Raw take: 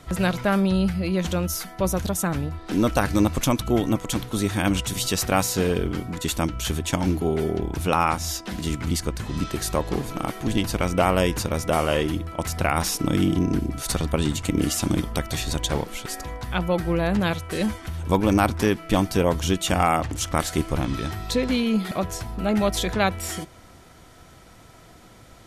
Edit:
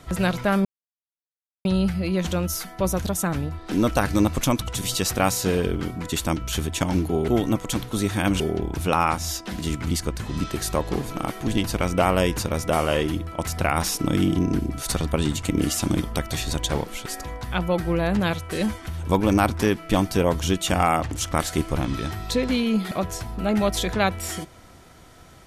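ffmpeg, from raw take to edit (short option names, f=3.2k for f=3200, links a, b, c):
-filter_complex "[0:a]asplit=5[a][b][c][d][e];[a]atrim=end=0.65,asetpts=PTS-STARTPTS,afade=t=out:st=0.646:d=0.004:c=hsin,apad=pad_dur=1[f];[b]atrim=start=0.65:end=3.682,asetpts=PTS-STARTPTS,afade=t=in:d=0.004:c=hsin[g];[c]atrim=start=4.798:end=7.402[h];[d]atrim=start=3.678:end=4.802[i];[e]atrim=start=7.398[j];[f][g]concat=n=2:v=0:a=1[k];[k][h]acrossfade=d=0.004:c1=hsin:c2=hsin[l];[l][i]acrossfade=d=0.004:c1=hsin:c2=hsin[m];[m][j]acrossfade=d=0.004:c1=hsin:c2=hsin"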